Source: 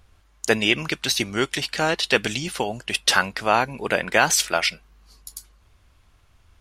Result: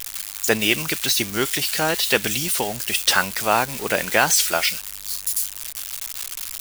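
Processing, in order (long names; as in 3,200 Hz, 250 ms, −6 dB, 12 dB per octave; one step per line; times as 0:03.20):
spike at every zero crossing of −17.5 dBFS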